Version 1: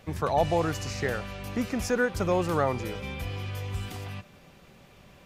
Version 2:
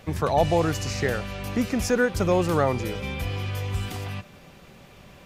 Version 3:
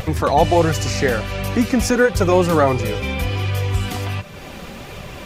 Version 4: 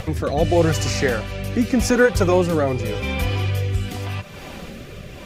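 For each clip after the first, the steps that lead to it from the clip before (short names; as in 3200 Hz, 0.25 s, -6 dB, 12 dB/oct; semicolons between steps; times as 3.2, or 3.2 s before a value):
dynamic EQ 1100 Hz, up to -3 dB, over -40 dBFS, Q 0.74; gain +5 dB
in parallel at 0 dB: upward compressor, threshold -24 dBFS; on the sum: vibrato 0.47 Hz 14 cents; flange 1.4 Hz, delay 1.5 ms, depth 2.8 ms, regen -41%; gain +5 dB
rotary speaker horn 0.85 Hz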